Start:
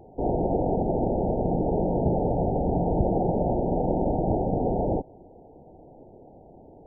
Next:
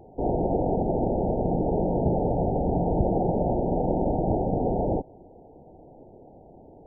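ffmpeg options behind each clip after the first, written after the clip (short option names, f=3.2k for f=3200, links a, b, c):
-af anull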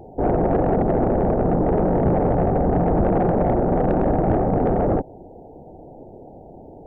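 -af "aeval=exprs='(tanh(10*val(0)+0.2)-tanh(0.2))/10':c=same,volume=8dB"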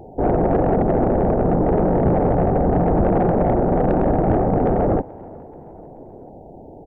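-filter_complex "[0:a]asplit=4[a][b][c][d];[b]adelay=432,afreqshift=61,volume=-23.5dB[e];[c]adelay=864,afreqshift=122,volume=-29.9dB[f];[d]adelay=1296,afreqshift=183,volume=-36.3dB[g];[a][e][f][g]amix=inputs=4:normalize=0,volume=1.5dB"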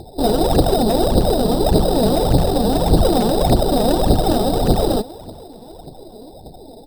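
-af "aphaser=in_gain=1:out_gain=1:delay=4.9:decay=0.66:speed=1.7:type=triangular,acrusher=samples=10:mix=1:aa=0.000001,volume=-1dB"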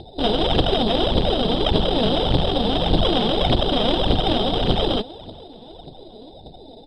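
-af "aeval=exprs='clip(val(0),-1,0.119)':c=same,lowpass=f=3.2k:t=q:w=10,volume=-3.5dB"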